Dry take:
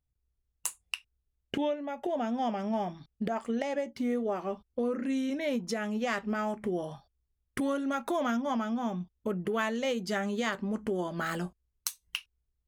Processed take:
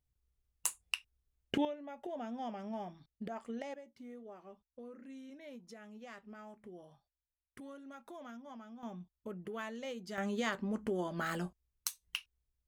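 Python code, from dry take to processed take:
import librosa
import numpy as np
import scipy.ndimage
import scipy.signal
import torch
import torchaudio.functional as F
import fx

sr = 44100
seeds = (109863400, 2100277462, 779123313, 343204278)

y = fx.gain(x, sr, db=fx.steps((0.0, -1.0), (1.65, -10.5), (3.74, -19.5), (8.83, -12.0), (10.18, -4.0)))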